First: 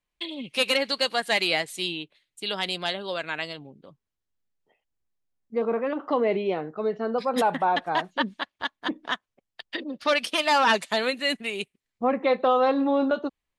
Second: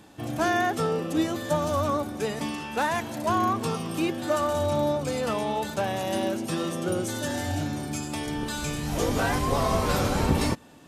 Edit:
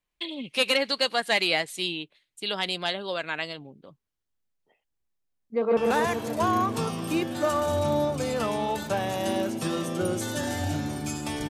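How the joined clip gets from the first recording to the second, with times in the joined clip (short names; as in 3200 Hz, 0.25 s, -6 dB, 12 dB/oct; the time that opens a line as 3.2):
first
5.5–5.77 echo throw 0.14 s, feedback 65%, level -2 dB
5.77 switch to second from 2.64 s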